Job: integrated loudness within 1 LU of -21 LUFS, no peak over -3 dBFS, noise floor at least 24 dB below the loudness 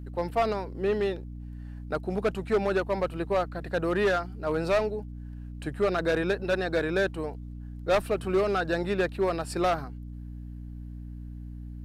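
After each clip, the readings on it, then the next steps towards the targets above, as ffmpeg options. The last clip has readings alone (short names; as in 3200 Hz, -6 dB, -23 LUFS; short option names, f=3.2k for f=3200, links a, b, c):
hum 60 Hz; harmonics up to 300 Hz; hum level -37 dBFS; loudness -28.5 LUFS; peak -15.5 dBFS; loudness target -21.0 LUFS
-> -af "bandreject=f=60:t=h:w=6,bandreject=f=120:t=h:w=6,bandreject=f=180:t=h:w=6,bandreject=f=240:t=h:w=6,bandreject=f=300:t=h:w=6"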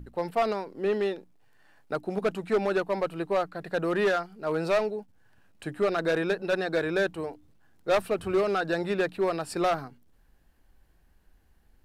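hum none; loudness -28.5 LUFS; peak -15.5 dBFS; loudness target -21.0 LUFS
-> -af "volume=7.5dB"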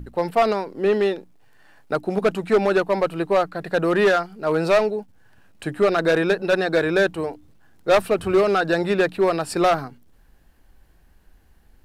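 loudness -21.0 LUFS; peak -8.0 dBFS; noise floor -55 dBFS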